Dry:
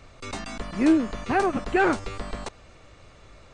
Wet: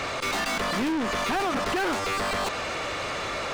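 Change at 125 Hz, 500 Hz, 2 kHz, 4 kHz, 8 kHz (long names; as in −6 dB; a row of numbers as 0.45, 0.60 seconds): −1.0, −1.5, +3.0, +11.0, +8.5 decibels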